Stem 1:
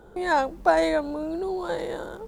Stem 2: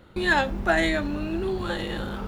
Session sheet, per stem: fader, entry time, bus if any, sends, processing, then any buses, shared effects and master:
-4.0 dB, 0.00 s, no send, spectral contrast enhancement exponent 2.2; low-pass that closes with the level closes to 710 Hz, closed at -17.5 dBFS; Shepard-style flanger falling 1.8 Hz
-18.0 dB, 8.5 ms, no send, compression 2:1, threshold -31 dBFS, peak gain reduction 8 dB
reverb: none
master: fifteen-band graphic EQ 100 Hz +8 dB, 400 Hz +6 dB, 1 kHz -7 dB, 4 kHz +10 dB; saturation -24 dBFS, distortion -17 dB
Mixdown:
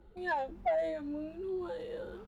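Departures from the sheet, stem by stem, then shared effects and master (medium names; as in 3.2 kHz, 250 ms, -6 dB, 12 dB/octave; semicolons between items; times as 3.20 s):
stem 2: polarity flipped; master: missing fifteen-band graphic EQ 100 Hz +8 dB, 400 Hz +6 dB, 1 kHz -7 dB, 4 kHz +10 dB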